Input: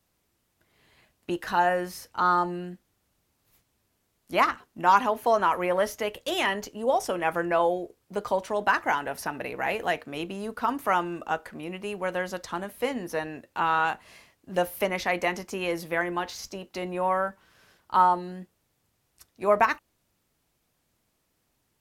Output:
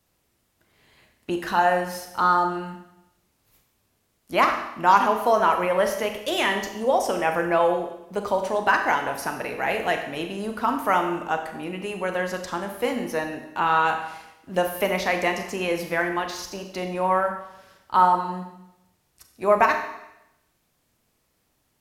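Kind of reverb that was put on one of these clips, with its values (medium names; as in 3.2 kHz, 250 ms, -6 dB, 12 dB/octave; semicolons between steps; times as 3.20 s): Schroeder reverb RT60 0.87 s, combs from 29 ms, DRR 5 dB; trim +2.5 dB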